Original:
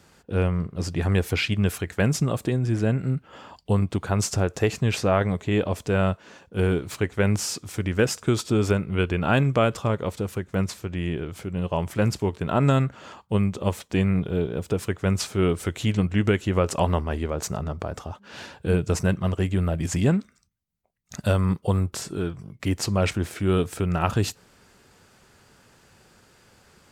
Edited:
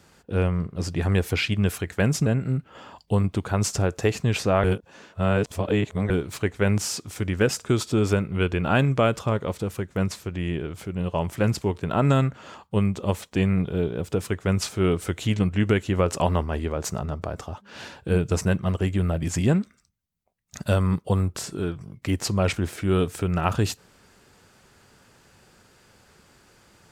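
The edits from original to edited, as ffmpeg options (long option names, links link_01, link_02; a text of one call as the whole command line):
ffmpeg -i in.wav -filter_complex "[0:a]asplit=4[link_01][link_02][link_03][link_04];[link_01]atrim=end=2.262[link_05];[link_02]atrim=start=2.838:end=5.222[link_06];[link_03]atrim=start=5.218:end=6.682,asetpts=PTS-STARTPTS,areverse[link_07];[link_04]atrim=start=6.678[link_08];[link_05][link_06]acrossfade=duration=0.004:curve1=hsin:curve2=hsin[link_09];[link_09][link_07]acrossfade=duration=0.004:curve1=hsin:curve2=hsin[link_10];[link_10][link_08]acrossfade=duration=0.004:curve1=hsin:curve2=hsin" out.wav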